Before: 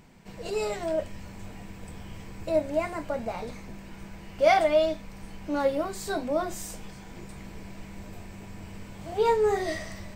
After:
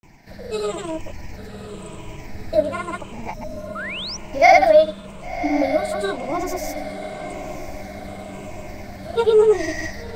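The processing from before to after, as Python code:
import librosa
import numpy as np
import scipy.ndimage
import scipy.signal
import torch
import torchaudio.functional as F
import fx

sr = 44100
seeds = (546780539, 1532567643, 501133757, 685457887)

p1 = fx.spec_ripple(x, sr, per_octave=0.71, drift_hz=-0.93, depth_db=12)
p2 = fx.spec_erase(p1, sr, start_s=3.37, length_s=0.45, low_hz=290.0, high_hz=5100.0)
p3 = fx.granulator(p2, sr, seeds[0], grain_ms=100.0, per_s=20.0, spray_ms=100.0, spread_st=0)
p4 = p3 + fx.echo_diffused(p3, sr, ms=1074, feedback_pct=55, wet_db=-12.0, dry=0)
p5 = fx.spec_paint(p4, sr, seeds[1], shape='rise', start_s=3.75, length_s=0.42, low_hz=1200.0, high_hz=6100.0, level_db=-35.0)
y = p5 * 10.0 ** (5.0 / 20.0)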